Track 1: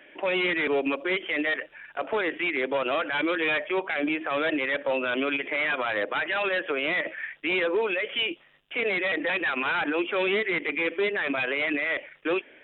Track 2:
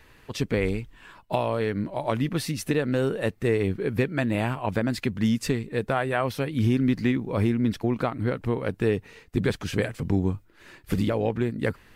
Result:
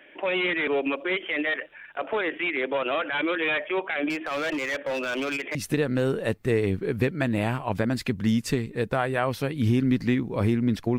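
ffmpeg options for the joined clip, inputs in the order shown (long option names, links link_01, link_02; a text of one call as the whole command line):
ffmpeg -i cue0.wav -i cue1.wav -filter_complex "[0:a]asettb=1/sr,asplit=3[link_01][link_02][link_03];[link_01]atrim=end=4.104[link_04];[link_02]atrim=start=4.1:end=5.55,asetpts=PTS-STARTPTS,afade=type=in:duration=0.004:curve=qsin,afade=type=out:start_time=1.446:duration=0.004:curve=qsin,volume=25dB,asoftclip=hard,volume=-25dB[link_05];[link_03]atrim=start=5.546[link_06];[link_04][link_05]acrossfade=duration=0.004:curve1=hsin:curve2=qsin[link_07];[link_07][link_06]acrossfade=duration=0.004:curve1=qsin:curve2=hsin,apad=whole_dur=10.98,atrim=end=10.98,atrim=end=5.552[link_08];[1:a]atrim=start=2.518:end=7.95[link_09];[link_08][link_09]acrossfade=duration=0.004:curve1=hsin:curve2=hsin" out.wav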